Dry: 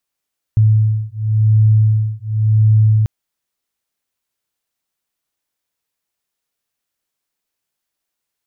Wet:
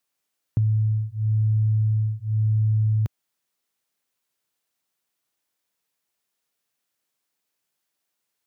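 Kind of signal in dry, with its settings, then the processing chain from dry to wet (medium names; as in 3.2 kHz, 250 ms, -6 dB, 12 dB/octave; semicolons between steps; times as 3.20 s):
beating tones 108 Hz, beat 0.92 Hz, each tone -13 dBFS 2.49 s
high-pass 110 Hz 12 dB/octave; compression, threshold -19 dBFS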